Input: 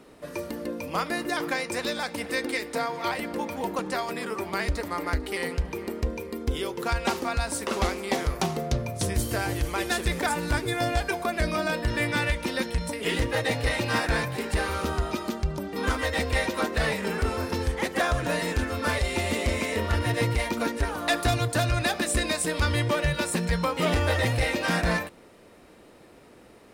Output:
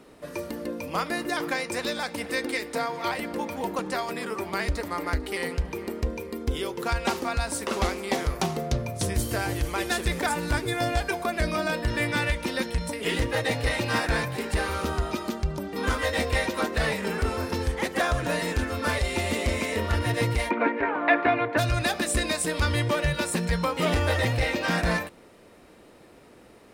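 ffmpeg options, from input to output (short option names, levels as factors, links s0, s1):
-filter_complex "[0:a]asettb=1/sr,asplit=3[s0][s1][s2];[s0]atrim=end=15.904[s3];[s1]atrim=start=15.9:end=16.36,asetpts=PTS-STARTPTS,afade=t=in:d=0.004:c=qsin,afade=t=out:st=0.456:d=0.004:c=qsin,asplit=2[s4][s5];[s5]adelay=21,volume=0.501[s6];[s4][s6]amix=inputs=2:normalize=0,atrim=end_sample=20286[s7];[s2]atrim=start=16.356[s8];[s3][s7]acrossfade=d=0.004:c1=hsin:c2=qsin[s9];[s9][s8]acrossfade=d=0.004:c1=qsin:c2=hsin,asplit=3[s10][s11][s12];[s10]afade=t=out:st=20.49:d=0.02[s13];[s11]highpass=250,equalizer=f=280:t=q:w=4:g=7,equalizer=f=410:t=q:w=4:g=5,equalizer=f=640:t=q:w=4:g=5,equalizer=f=970:t=q:w=4:g=7,equalizer=f=1600:t=q:w=4:g=5,equalizer=f=2200:t=q:w=4:g=9,lowpass=f=2600:w=0.5412,lowpass=f=2600:w=1.3066,afade=t=in:st=20.49:d=0.02,afade=t=out:st=21.57:d=0.02[s14];[s12]afade=t=in:st=21.57:d=0.02[s15];[s13][s14][s15]amix=inputs=3:normalize=0,asettb=1/sr,asplit=3[s16][s17][s18];[s16]atrim=end=24.254[s19];[s17]atrim=start=24.25:end=24.78,asetpts=PTS-STARTPTS,afade=t=in:d=0.004:c=qsin,afade=t=out:st=0.526:d=0.004:c=qsin,equalizer=f=10000:t=o:w=0.7:g=-6.5[s20];[s18]atrim=start=24.776[s21];[s19][s20]acrossfade=d=0.004:c1=hsin:c2=qsin[s22];[s22][s21]acrossfade=d=0.004:c1=qsin:c2=hsin"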